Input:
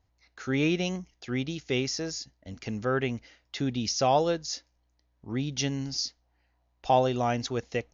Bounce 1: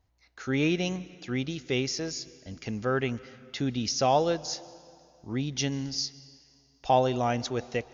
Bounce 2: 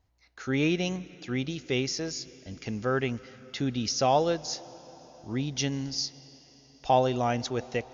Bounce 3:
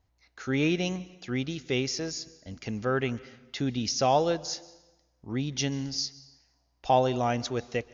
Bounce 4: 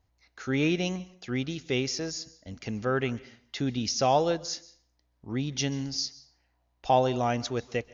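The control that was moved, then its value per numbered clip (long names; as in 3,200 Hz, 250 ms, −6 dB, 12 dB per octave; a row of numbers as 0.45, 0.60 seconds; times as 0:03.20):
dense smooth reverb, RT60: 2.4, 5.3, 1.1, 0.5 seconds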